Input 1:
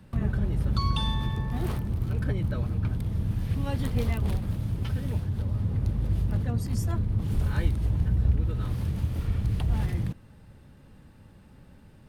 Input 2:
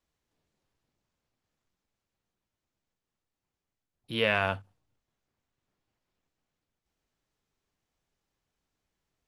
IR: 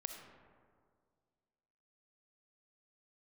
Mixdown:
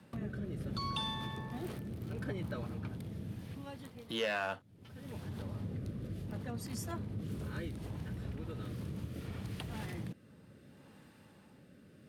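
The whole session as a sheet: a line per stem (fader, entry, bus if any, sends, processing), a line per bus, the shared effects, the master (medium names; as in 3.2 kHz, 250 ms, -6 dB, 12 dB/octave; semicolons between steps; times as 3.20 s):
+1.5 dB, 0.00 s, no send, rotary cabinet horn 0.7 Hz; auto duck -22 dB, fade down 0.75 s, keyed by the second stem
-5.0 dB, 0.00 s, no send, band-stop 2.4 kHz, Q 5; waveshaping leveller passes 2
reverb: none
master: Bessel high-pass 230 Hz, order 2; compression 1.5:1, threshold -44 dBFS, peak gain reduction 7.5 dB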